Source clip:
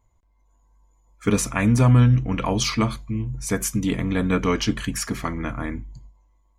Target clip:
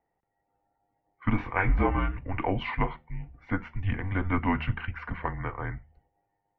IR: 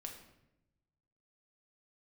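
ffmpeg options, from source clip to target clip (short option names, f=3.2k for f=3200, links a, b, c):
-filter_complex "[0:a]asettb=1/sr,asplit=3[a][b][c];[a]atrim=end=1.374[d];[b]atrim=start=1.37:end=2.18,asetpts=PTS-STARTPTS,afade=t=in:d=0.004:c=qsin,afade=t=out:st=0.806:d=0.004:c=qsin,asplit=2[e][f];[f]adelay=22,volume=-2dB[g];[e][g]amix=inputs=2:normalize=0,atrim=end_sample=35721[h];[c]atrim=start=2.176[i];[d][h]acrossfade=d=0.004:c1=hsin:c2=qsin[j];[j][i]acrossfade=d=0.004:c1=qsin:c2=hsin,highpass=f=220:t=q:w=0.5412,highpass=f=220:t=q:w=1.307,lowpass=f=2.7k:t=q:w=0.5176,lowpass=f=2.7k:t=q:w=0.7071,lowpass=f=2.7k:t=q:w=1.932,afreqshift=-190,bandreject=f=77.33:t=h:w=4,bandreject=f=154.66:t=h:w=4,bandreject=f=231.99:t=h:w=4,volume=-2.5dB"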